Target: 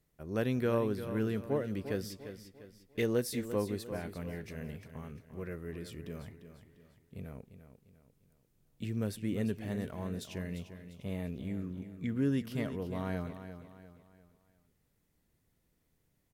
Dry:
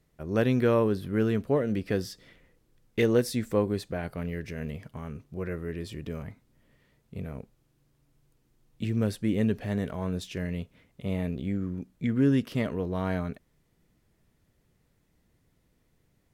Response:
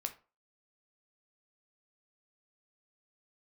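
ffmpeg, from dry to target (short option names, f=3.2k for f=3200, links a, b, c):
-af "highshelf=f=8.6k:g=9,aecho=1:1:348|696|1044|1392:0.282|0.113|0.0451|0.018,volume=-7.5dB"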